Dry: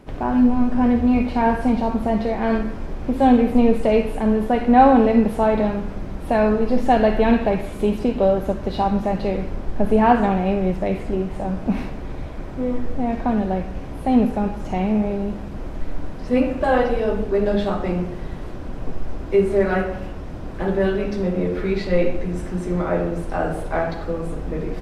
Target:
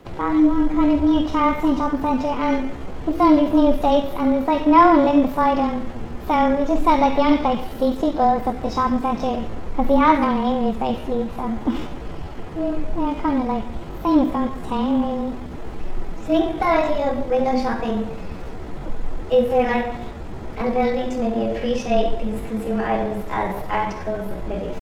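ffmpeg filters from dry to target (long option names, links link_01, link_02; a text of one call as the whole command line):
ffmpeg -i in.wav -af "afreqshift=-19,asetrate=58866,aresample=44100,atempo=0.749154" out.wav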